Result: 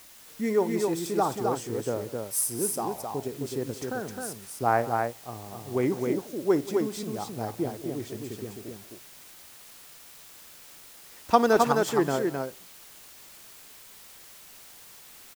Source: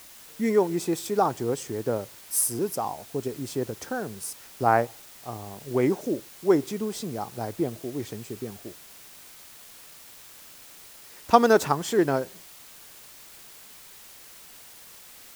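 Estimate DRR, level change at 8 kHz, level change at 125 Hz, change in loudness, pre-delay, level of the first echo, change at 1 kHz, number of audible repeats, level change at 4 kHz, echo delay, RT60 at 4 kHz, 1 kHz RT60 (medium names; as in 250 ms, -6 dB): no reverb, -1.5 dB, -1.5 dB, -1.5 dB, no reverb, -18.0 dB, -1.5 dB, 3, -1.5 dB, 55 ms, no reverb, no reverb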